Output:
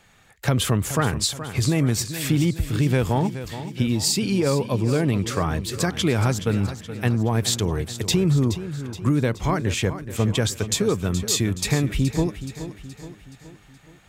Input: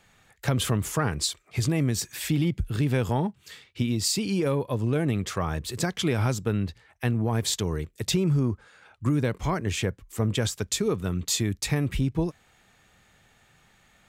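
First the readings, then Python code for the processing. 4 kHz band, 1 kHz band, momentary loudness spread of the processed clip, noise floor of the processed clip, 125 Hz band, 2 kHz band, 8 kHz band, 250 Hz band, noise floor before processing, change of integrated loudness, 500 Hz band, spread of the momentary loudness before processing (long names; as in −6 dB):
+4.5 dB, +4.5 dB, 8 LU, −51 dBFS, +4.5 dB, +4.5 dB, +4.5 dB, +4.5 dB, −62 dBFS, +4.0 dB, +4.5 dB, 6 LU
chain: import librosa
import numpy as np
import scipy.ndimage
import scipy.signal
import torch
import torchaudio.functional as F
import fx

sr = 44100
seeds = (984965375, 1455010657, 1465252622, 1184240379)

y = fx.echo_feedback(x, sr, ms=423, feedback_pct=51, wet_db=-12.0)
y = F.gain(torch.from_numpy(y), 4.0).numpy()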